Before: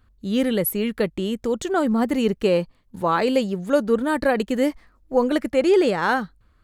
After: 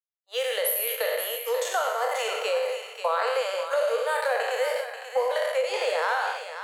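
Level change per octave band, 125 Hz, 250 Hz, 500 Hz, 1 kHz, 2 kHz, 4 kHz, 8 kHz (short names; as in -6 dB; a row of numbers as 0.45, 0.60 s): under -40 dB, under -40 dB, -4.5 dB, -1.5 dB, -0.5 dB, +1.5 dB, +3.0 dB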